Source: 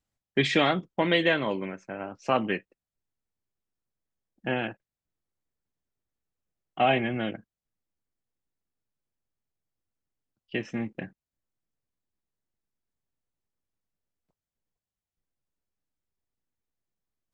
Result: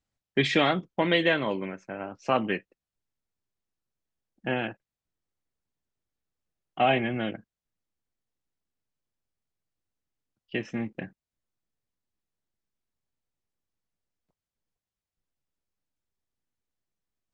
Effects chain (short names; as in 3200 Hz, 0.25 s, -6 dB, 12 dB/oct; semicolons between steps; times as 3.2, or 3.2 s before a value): LPF 8100 Hz